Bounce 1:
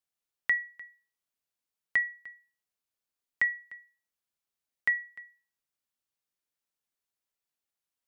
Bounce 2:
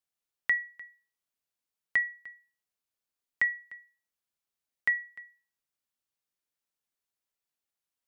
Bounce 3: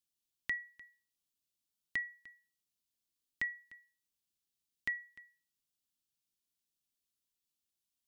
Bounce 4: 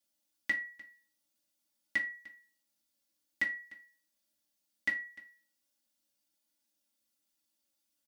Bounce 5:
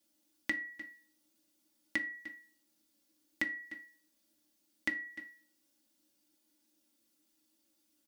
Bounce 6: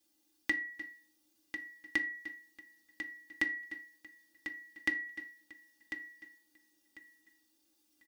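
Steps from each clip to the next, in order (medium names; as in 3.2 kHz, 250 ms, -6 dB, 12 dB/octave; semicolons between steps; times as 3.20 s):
no audible change
high-order bell 1 kHz -12 dB 2.6 oct; trim +1.5 dB
high-pass 64 Hz; comb 3.6 ms, depth 86%; reverberation RT60 0.30 s, pre-delay 3 ms, DRR -2 dB; trim +1 dB
peaking EQ 310 Hz +13.5 dB 0.72 oct; compression 2.5:1, threshold -40 dBFS, peak gain reduction 10 dB; trim +5 dB
comb 2.5 ms, depth 49%; feedback delay 1046 ms, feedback 21%, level -9.5 dB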